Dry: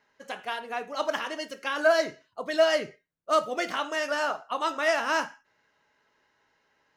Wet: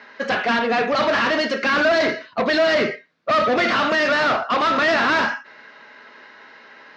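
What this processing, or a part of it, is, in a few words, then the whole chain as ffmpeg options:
overdrive pedal into a guitar cabinet: -filter_complex "[0:a]asplit=2[a][b];[b]highpass=f=720:p=1,volume=34dB,asoftclip=type=tanh:threshold=-10.5dB[c];[a][c]amix=inputs=2:normalize=0,lowpass=f=5k:p=1,volume=-6dB,highpass=99,equalizer=f=230:t=q:w=4:g=9,equalizer=f=870:t=q:w=4:g=-5,equalizer=f=3k:t=q:w=4:g=-5,lowpass=f=4.6k:w=0.5412,lowpass=f=4.6k:w=1.3066"

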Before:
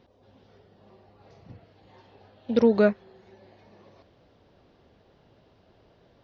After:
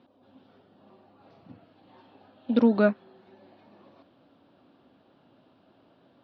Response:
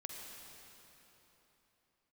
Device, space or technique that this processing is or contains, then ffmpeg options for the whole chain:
kitchen radio: -af "highpass=170,equalizer=f=270:t=q:w=4:g=8,equalizer=f=440:t=q:w=4:g=-7,equalizer=f=1.3k:t=q:w=4:g=3,equalizer=f=2k:t=q:w=4:g=-7,lowpass=f=4.1k:w=0.5412,lowpass=f=4.1k:w=1.3066"

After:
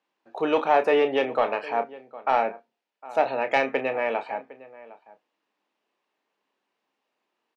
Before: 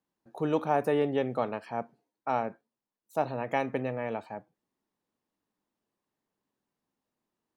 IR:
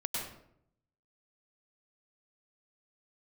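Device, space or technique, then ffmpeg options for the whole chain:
intercom: -filter_complex "[0:a]asettb=1/sr,asplit=3[a][b][c];[a]atrim=end=2.364[d];[b]atrim=start=2.36:end=3.6,asetpts=PTS-STARTPTS,afade=t=in:d=0.004:c=qsin,afade=t=out:st=1.236:d=0.004:c=qsin,bandreject=f=1.1k:w=7.2[e];[c]atrim=start=3.596[f];[d][e]acrossfade=d=0.004:c1=hsin:c2=qsin[g];[g][f]acrossfade=d=0.004:c1=qsin:c2=hsin,highpass=440,lowpass=4.4k,equalizer=f=2.6k:t=o:w=0.58:g=6,asplit=2[h][i];[i]adelay=758,volume=-19dB,highshelf=f=4k:g=-17.1[j];[h][j]amix=inputs=2:normalize=0,asoftclip=type=tanh:threshold=-18.5dB,asplit=2[k][l];[l]adelay=30,volume=-9.5dB[m];[k][m]amix=inputs=2:normalize=0,volume=9dB"

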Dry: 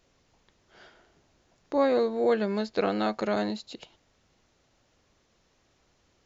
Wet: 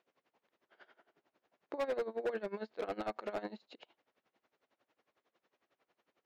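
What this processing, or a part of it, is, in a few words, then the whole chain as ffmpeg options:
helicopter radio: -af "highpass=340,lowpass=2.7k,aeval=exprs='val(0)*pow(10,-20*(0.5-0.5*cos(2*PI*11*n/s))/20)':c=same,asoftclip=type=hard:threshold=-27.5dB,volume=-2.5dB"

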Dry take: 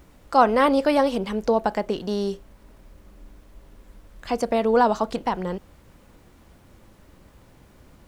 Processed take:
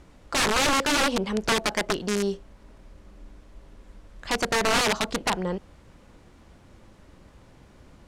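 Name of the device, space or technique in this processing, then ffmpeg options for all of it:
overflowing digital effects unit: -af "aeval=exprs='(mod(6.68*val(0)+1,2)-1)/6.68':c=same,lowpass=8.4k"

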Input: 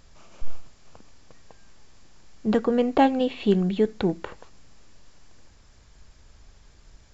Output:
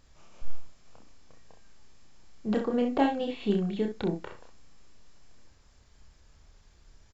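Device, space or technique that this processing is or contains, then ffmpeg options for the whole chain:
slapback doubling: -filter_complex "[0:a]asplit=3[a][b][c];[b]adelay=29,volume=-4dB[d];[c]adelay=65,volume=-8dB[e];[a][d][e]amix=inputs=3:normalize=0,volume=-7.5dB"

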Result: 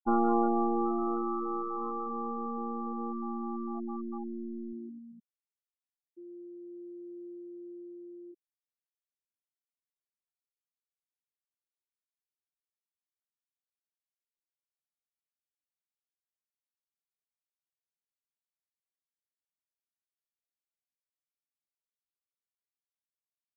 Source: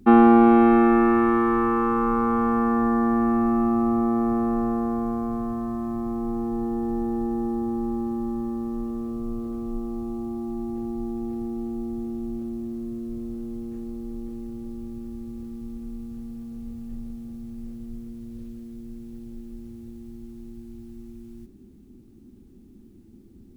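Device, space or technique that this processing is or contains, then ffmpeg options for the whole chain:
crystal radio: -af "highpass=330,lowpass=2.8k,aeval=exprs='if(lt(val(0),0),0.447*val(0),val(0))':c=same,afftfilt=real='re*gte(hypot(re,im),0.158)':imag='im*gte(hypot(re,im),0.158)':win_size=1024:overlap=0.75,volume=-6.5dB"

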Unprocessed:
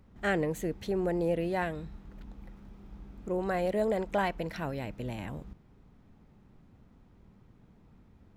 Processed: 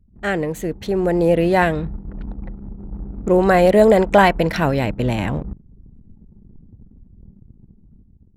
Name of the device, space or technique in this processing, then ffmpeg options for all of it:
voice memo with heavy noise removal: -af "anlmdn=0.00251,dynaudnorm=f=510:g=5:m=10dB,volume=7dB"

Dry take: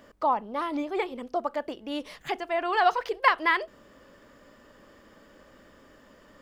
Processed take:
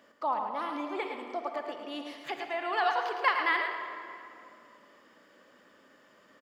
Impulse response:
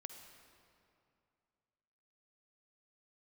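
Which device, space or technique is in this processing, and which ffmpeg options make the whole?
PA in a hall: -filter_complex "[0:a]highpass=190,equalizer=f=2.4k:t=o:w=2.9:g=4.5,aecho=1:1:110:0.447[a];[1:a]atrim=start_sample=2205[b];[a][b]afir=irnorm=-1:irlink=0,volume=-3dB"

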